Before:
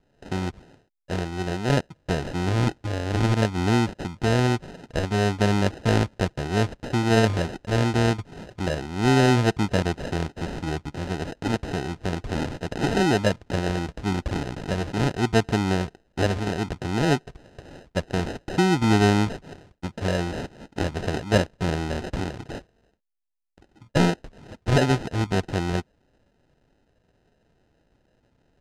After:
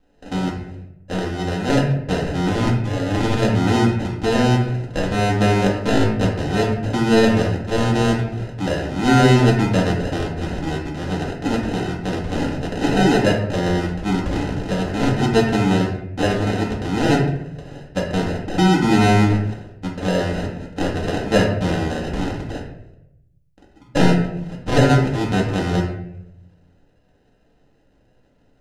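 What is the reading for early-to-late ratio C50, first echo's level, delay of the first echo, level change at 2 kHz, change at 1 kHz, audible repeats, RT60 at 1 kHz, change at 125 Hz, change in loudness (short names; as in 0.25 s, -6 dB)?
4.0 dB, none, none, +4.5 dB, +5.5 dB, none, 0.70 s, +5.0 dB, +5.0 dB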